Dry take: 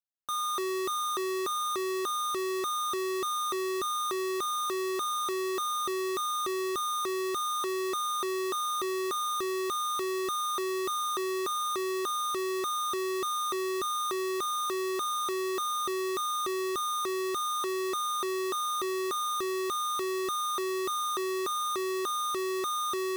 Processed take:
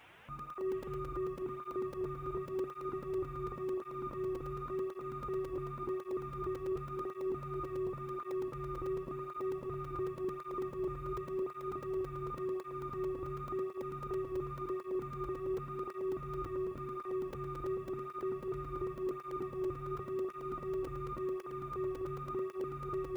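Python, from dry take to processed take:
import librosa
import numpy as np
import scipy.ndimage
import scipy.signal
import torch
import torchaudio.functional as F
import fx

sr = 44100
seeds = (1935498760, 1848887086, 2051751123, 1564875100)

p1 = fx.delta_mod(x, sr, bps=16000, step_db=-54.0)
p2 = 10.0 ** (-40.0 / 20.0) * np.tanh(p1 / 10.0 ** (-40.0 / 20.0))
p3 = p1 + (p2 * 10.0 ** (-8.0 / 20.0))
p4 = fx.quant_dither(p3, sr, seeds[0], bits=12, dither='none')
p5 = p4 + fx.echo_split(p4, sr, split_hz=1200.0, low_ms=253, high_ms=695, feedback_pct=52, wet_db=-6.5, dry=0)
p6 = fx.buffer_crackle(p5, sr, first_s=0.39, period_s=0.11, block=128, kind='zero')
p7 = fx.flanger_cancel(p6, sr, hz=0.91, depth_ms=5.2)
y = p7 * 10.0 ** (2.5 / 20.0)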